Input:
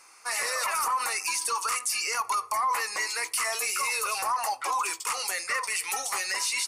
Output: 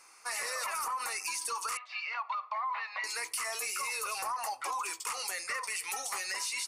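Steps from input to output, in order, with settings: 1.77–3.04 s: Chebyshev band-pass 600–3900 Hz, order 4; compression 2.5:1, threshold -30 dBFS, peak gain reduction 5 dB; trim -3.5 dB

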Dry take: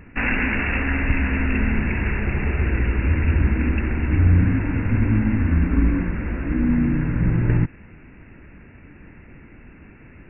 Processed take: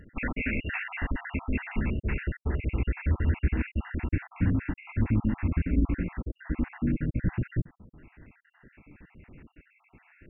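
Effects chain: random holes in the spectrogram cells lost 61%; trim -5.5 dB

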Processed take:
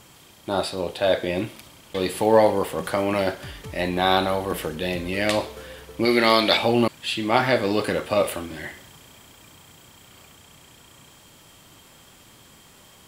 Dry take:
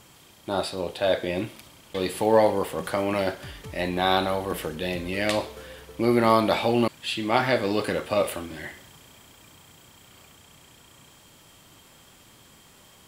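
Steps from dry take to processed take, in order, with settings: 6.05–6.57 s: graphic EQ 125/1000/2000/4000 Hz -12/-5/+6/+11 dB; trim +2.5 dB

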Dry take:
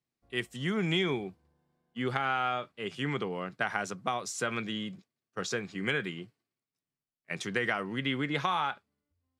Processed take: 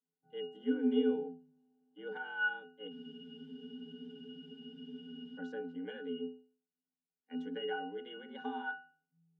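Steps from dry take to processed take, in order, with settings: pitch-class resonator F, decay 0.41 s; frequency shift +79 Hz; spectral freeze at 2.96 s, 2.41 s; trim +10 dB

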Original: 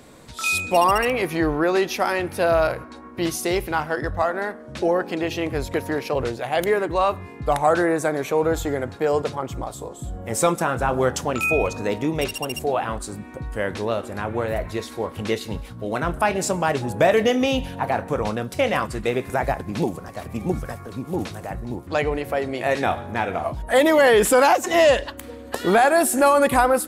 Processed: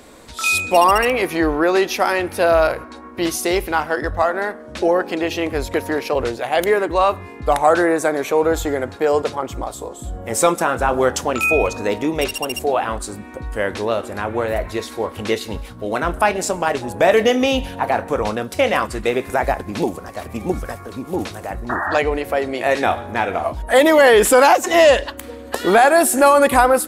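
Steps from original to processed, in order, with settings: peaking EQ 140 Hz -10 dB 0.86 oct; 16.31–17.07 s: AM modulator 180 Hz, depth 30%; 21.69–21.98 s: painted sound noise 590–1900 Hz -27 dBFS; trim +4.5 dB

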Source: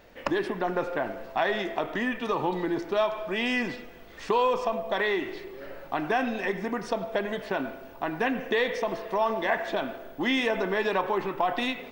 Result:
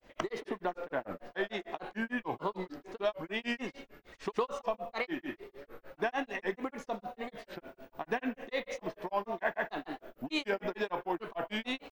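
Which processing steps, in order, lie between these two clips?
granulator 145 ms, grains 6.7 per s, pitch spread up and down by 3 st; trim -4 dB

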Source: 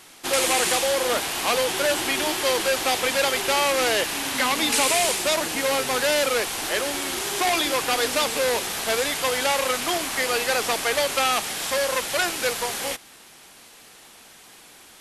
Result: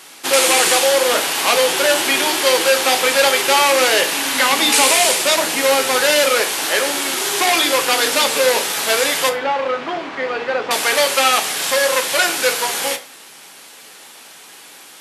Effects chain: high-pass 110 Hz 12 dB/octave; bass shelf 190 Hz -11.5 dB; band-stop 690 Hz, Q 20; 9.29–10.71 s: tape spacing loss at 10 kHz 40 dB; reverberation RT60 0.40 s, pre-delay 6 ms, DRR 6 dB; trim +7 dB

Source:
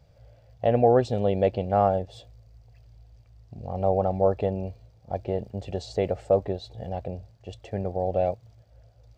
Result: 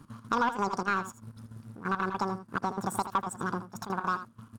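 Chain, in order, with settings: dynamic bell 2.9 kHz, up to +6 dB, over -46 dBFS, Q 1.1; waveshaping leveller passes 1; compression 2.5:1, threshold -41 dBFS, peak gain reduction 18 dB; trance gate "x.xx.xxxxx..x" 154 bpm -12 dB; speed mistake 7.5 ips tape played at 15 ips; delay 80 ms -12 dB; trim +7.5 dB

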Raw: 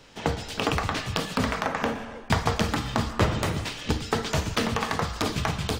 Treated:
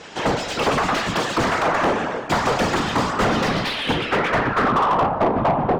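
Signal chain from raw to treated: whisper effect; low-pass sweep 7.6 kHz -> 780 Hz, 3.19–5.12 s; overdrive pedal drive 27 dB, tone 1 kHz, clips at -7.5 dBFS

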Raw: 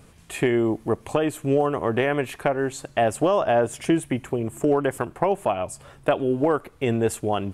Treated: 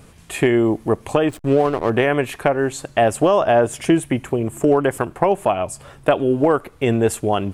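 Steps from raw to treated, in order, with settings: 1.29–1.90 s: hysteresis with a dead band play -29 dBFS; trim +5 dB

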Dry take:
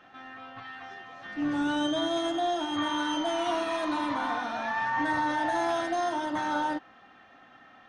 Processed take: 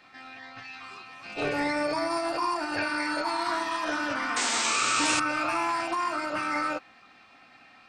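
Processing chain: painted sound noise, 4.36–5.20 s, 220–8500 Hz -28 dBFS; formant shift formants +6 st

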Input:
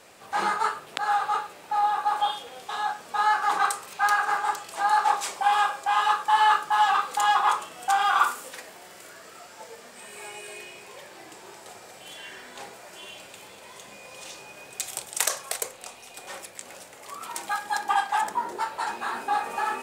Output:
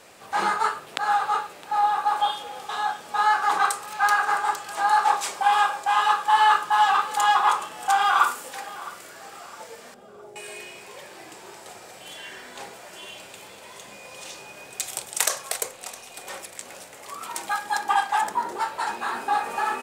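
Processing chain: 9.94–10.36 s: steep low-pass 690 Hz; on a send: feedback delay 662 ms, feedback 39%, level -18.5 dB; on the sum: trim +2 dB

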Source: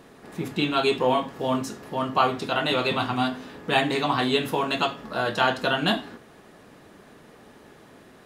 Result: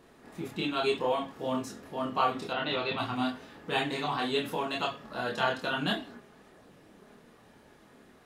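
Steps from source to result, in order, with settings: chorus voices 4, 0.58 Hz, delay 27 ms, depth 2.5 ms; 2.53–2.98 s: inverse Chebyshev low-pass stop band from 11 kHz, stop band 50 dB; trim -4 dB

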